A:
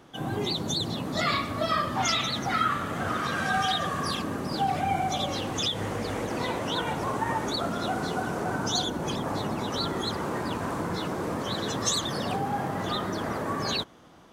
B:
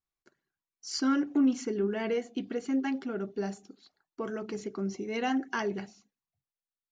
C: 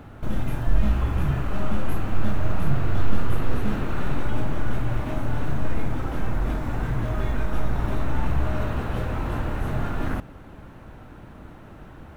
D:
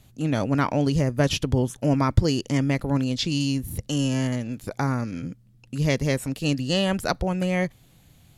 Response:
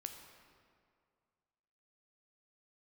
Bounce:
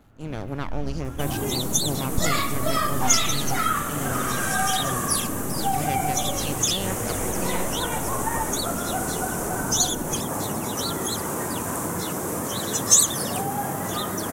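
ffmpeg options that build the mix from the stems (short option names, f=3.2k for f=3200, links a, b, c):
-filter_complex "[0:a]aexciter=amount=5.7:drive=7.8:freq=6.3k,adelay=1050,volume=1.5dB[a];[1:a]volume=-16.5dB[b];[2:a]volume=-13.5dB[c];[3:a]aeval=exprs='max(val(0),0)':c=same,volume=-8.5dB,asplit=2[d][e];[e]volume=-7dB[f];[4:a]atrim=start_sample=2205[g];[f][g]afir=irnorm=-1:irlink=0[h];[a][b][c][d][h]amix=inputs=5:normalize=0"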